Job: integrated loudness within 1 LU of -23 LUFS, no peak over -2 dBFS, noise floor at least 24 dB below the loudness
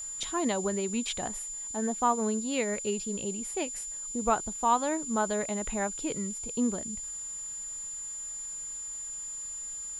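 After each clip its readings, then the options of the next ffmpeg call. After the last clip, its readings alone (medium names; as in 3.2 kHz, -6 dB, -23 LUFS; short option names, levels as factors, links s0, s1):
steady tone 7.1 kHz; tone level -36 dBFS; noise floor -39 dBFS; noise floor target -56 dBFS; loudness -31.5 LUFS; peak level -13.5 dBFS; loudness target -23.0 LUFS
-> -af "bandreject=f=7100:w=30"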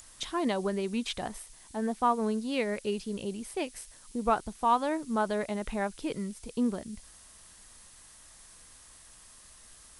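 steady tone not found; noise floor -54 dBFS; noise floor target -56 dBFS
-> -af "afftdn=nr=6:nf=-54"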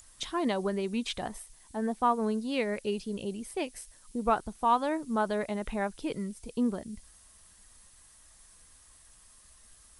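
noise floor -58 dBFS; loudness -32.0 LUFS; peak level -14.0 dBFS; loudness target -23.0 LUFS
-> -af "volume=2.82"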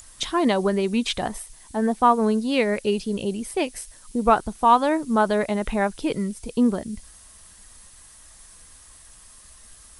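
loudness -23.0 LUFS; peak level -5.0 dBFS; noise floor -49 dBFS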